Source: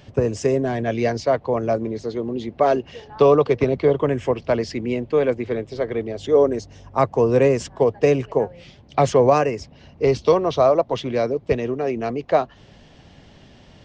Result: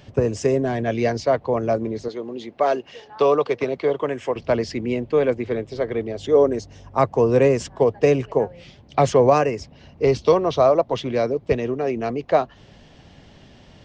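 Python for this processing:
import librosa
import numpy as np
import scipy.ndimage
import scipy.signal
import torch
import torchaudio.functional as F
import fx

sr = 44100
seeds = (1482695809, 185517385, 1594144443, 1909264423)

y = fx.highpass(x, sr, hz=490.0, slope=6, at=(2.08, 4.36))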